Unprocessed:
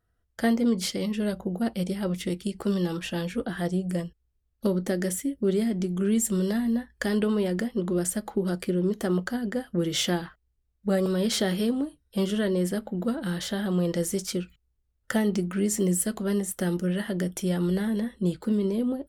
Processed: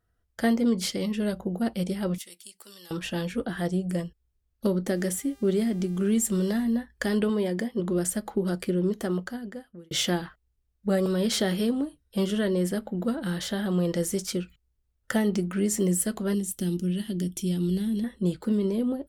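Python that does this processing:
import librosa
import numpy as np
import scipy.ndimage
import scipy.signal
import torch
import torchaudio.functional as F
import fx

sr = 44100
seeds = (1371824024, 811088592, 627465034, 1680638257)

y = fx.differentiator(x, sr, at=(2.18, 2.91))
y = fx.dmg_buzz(y, sr, base_hz=400.0, harmonics=39, level_db=-59.0, tilt_db=-3, odd_only=False, at=(4.95, 6.63), fade=0.02)
y = fx.notch_comb(y, sr, f0_hz=1400.0, at=(7.29, 7.8))
y = fx.band_shelf(y, sr, hz=970.0, db=-14.5, octaves=2.4, at=(16.34, 18.04))
y = fx.edit(y, sr, fx.fade_out_span(start_s=8.84, length_s=1.07), tone=tone)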